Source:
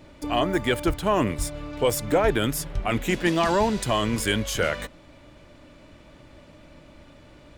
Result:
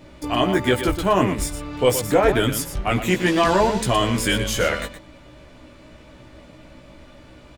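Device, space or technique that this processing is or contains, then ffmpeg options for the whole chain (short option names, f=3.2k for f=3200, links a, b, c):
slapback doubling: -filter_complex "[0:a]asplit=3[a][b][c];[b]adelay=16,volume=-3dB[d];[c]adelay=119,volume=-8.5dB[e];[a][d][e]amix=inputs=3:normalize=0,volume=2dB"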